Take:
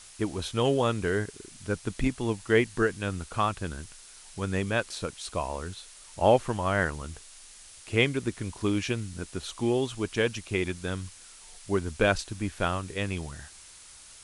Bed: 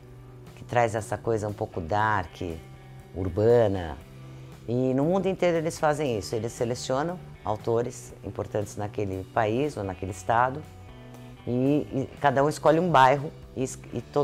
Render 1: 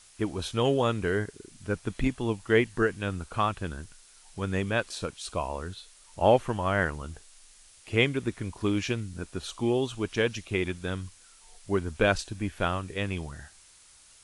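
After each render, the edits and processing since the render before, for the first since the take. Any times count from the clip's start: noise print and reduce 6 dB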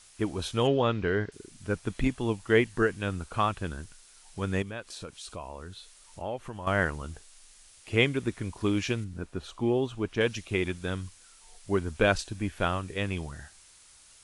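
0.67–1.32 LPF 4800 Hz 24 dB/oct; 4.62–6.67 compressor 2:1, threshold -42 dBFS; 9.04–10.21 high shelf 3000 Hz -11 dB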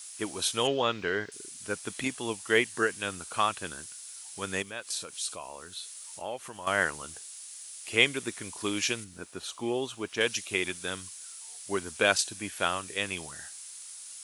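HPF 67 Hz; RIAA curve recording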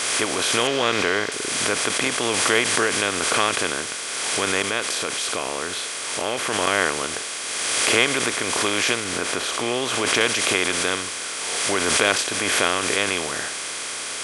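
per-bin compression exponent 0.4; backwards sustainer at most 24 dB/s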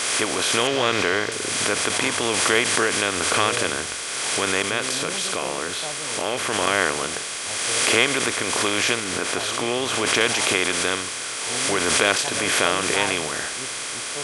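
add bed -12.5 dB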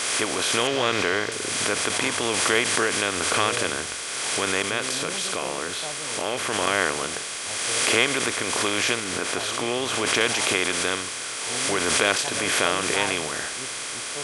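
gain -2 dB

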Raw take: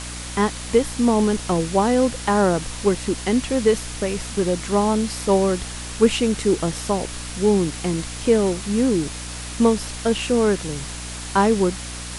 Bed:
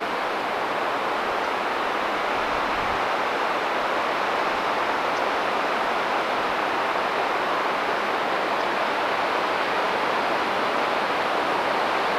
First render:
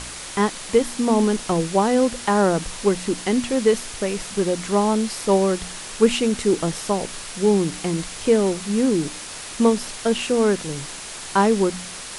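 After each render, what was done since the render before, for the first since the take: de-hum 60 Hz, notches 5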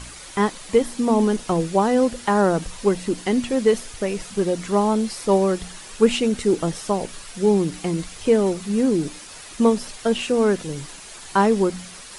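denoiser 8 dB, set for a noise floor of -35 dBFS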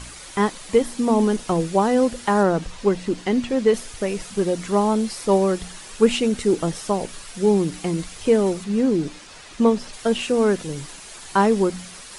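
2.43–3.74 air absorption 59 m; 8.64–9.93 air absorption 61 m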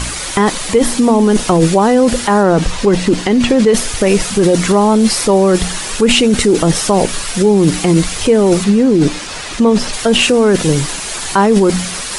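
in parallel at +3 dB: negative-ratio compressor -24 dBFS, ratio -0.5; on the sum: maximiser +6 dB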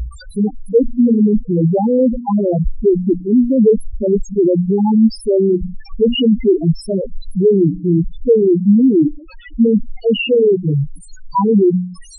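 in parallel at -10 dB: soft clip -9.5 dBFS, distortion -12 dB; on the sum: loudest bins only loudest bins 2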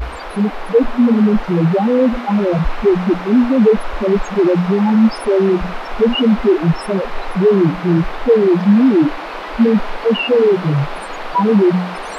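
add bed -4 dB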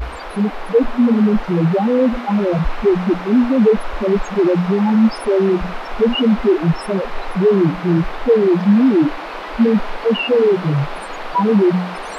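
gain -1.5 dB

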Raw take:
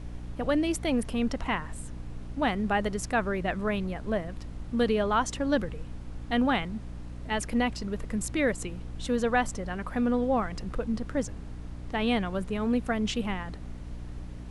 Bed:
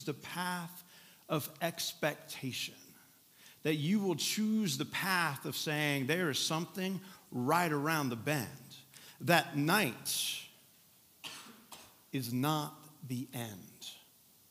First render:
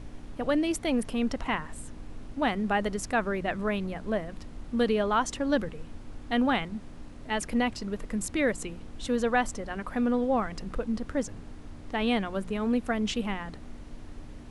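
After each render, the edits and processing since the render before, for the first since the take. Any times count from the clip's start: notches 60/120/180 Hz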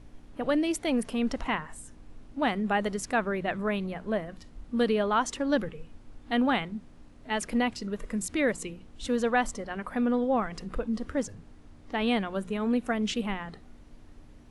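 noise print and reduce 8 dB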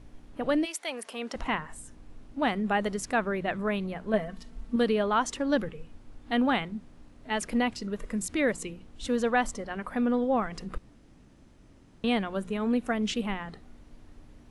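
0.64–1.34 HPF 1100 Hz -> 390 Hz; 4.13–4.76 comb 4.5 ms, depth 74%; 10.78–12.04 room tone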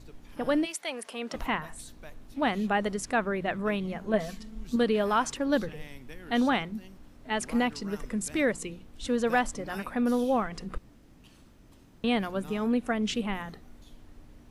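add bed -15 dB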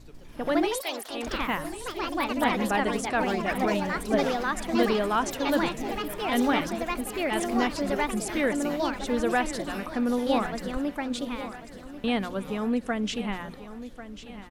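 echoes that change speed 0.142 s, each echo +3 st, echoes 3; feedback echo 1.093 s, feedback 49%, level -13.5 dB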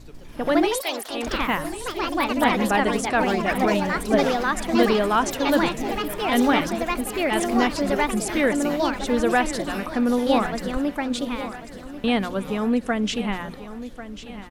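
gain +5 dB

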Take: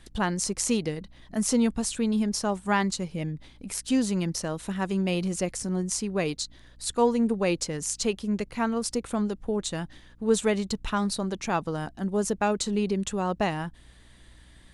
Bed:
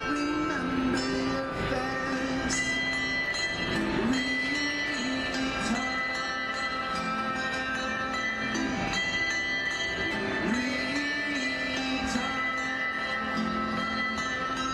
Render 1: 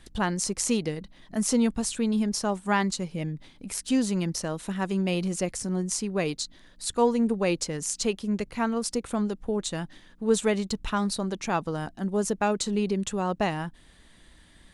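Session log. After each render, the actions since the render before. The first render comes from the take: de-hum 60 Hz, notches 2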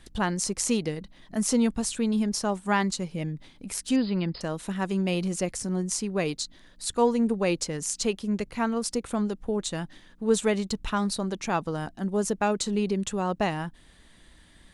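3.96–4.41 brick-wall FIR low-pass 5100 Hz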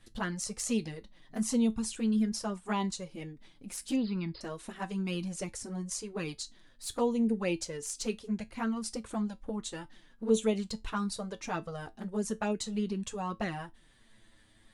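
envelope flanger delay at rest 10.2 ms, full sweep at -19.5 dBFS; resonator 110 Hz, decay 0.17 s, harmonics all, mix 60%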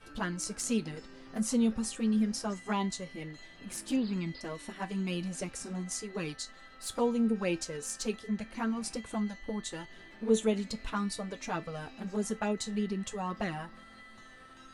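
add bed -23.5 dB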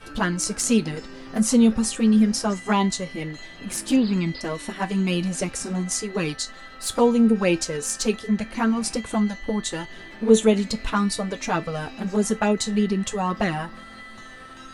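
gain +11 dB

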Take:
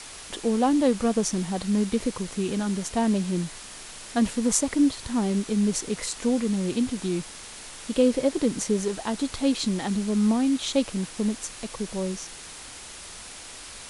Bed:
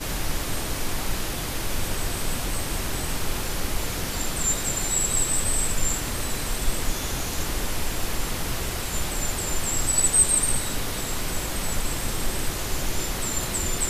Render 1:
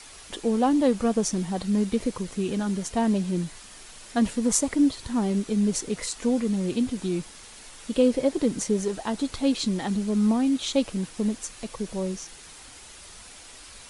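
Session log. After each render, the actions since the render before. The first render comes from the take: denoiser 6 dB, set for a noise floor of -42 dBFS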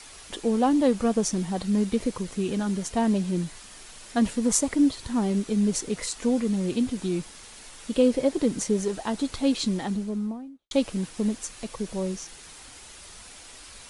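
9.63–10.71 studio fade out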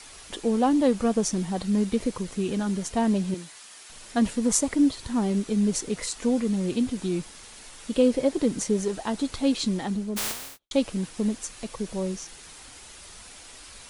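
3.34–3.9 HPF 810 Hz 6 dB/oct; 10.16–10.58 spectral contrast lowered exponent 0.11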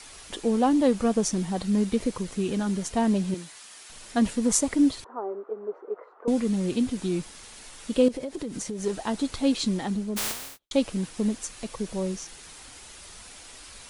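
5.04–6.28 Chebyshev band-pass 390–1300 Hz, order 3; 8.08–8.84 compressor 8:1, threshold -29 dBFS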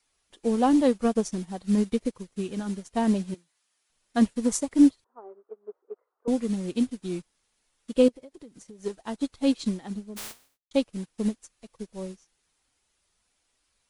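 in parallel at +1 dB: limiter -17.5 dBFS, peak gain reduction 12 dB; on the sum: upward expander 2.5:1, over -35 dBFS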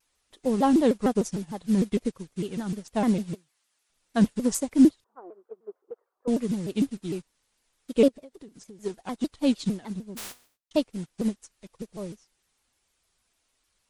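shaped vibrato saw down 6.6 Hz, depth 250 cents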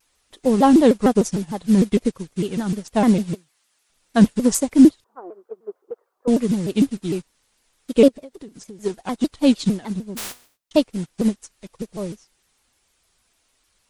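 gain +7.5 dB; limiter -3 dBFS, peak gain reduction 2 dB

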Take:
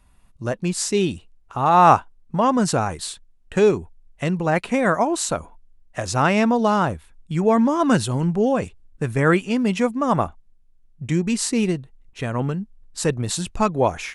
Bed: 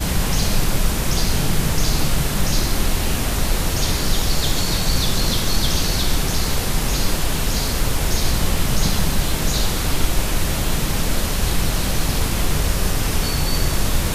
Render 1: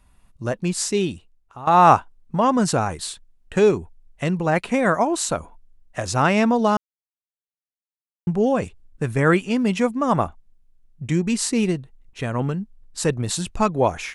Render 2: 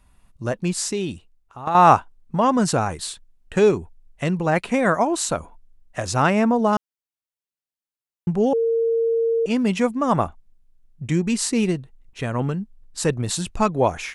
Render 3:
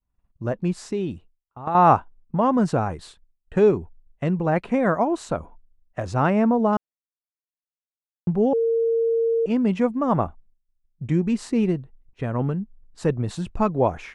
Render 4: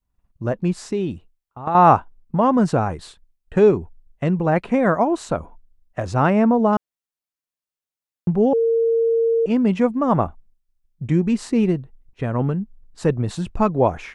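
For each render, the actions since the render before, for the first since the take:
0.83–1.67 fade out, to -15.5 dB; 6.77–8.27 mute
0.78–1.75 compressor 3:1, threshold -21 dBFS; 6.3–6.73 bell 4000 Hz -10.5 dB 1.4 oct; 8.53–9.46 bleep 458 Hz -17 dBFS
LPF 1000 Hz 6 dB/oct; expander -42 dBFS
gain +3 dB; limiter -2 dBFS, peak gain reduction 1 dB

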